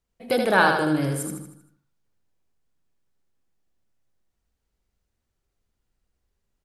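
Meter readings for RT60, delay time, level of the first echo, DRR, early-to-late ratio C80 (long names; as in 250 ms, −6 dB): no reverb audible, 78 ms, −4.5 dB, no reverb audible, no reverb audible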